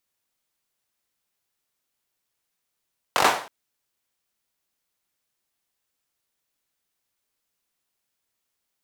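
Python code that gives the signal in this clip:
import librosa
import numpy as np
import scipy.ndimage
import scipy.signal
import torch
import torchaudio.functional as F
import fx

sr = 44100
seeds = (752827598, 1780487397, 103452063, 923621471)

y = fx.drum_clap(sr, seeds[0], length_s=0.32, bursts=5, spacing_ms=21, hz=830.0, decay_s=0.44)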